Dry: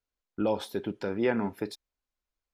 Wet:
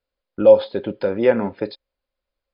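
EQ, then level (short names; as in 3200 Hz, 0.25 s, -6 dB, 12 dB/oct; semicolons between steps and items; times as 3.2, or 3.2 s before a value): brick-wall FIR low-pass 5100 Hz; bell 540 Hz +15 dB 0.22 oct; +6.0 dB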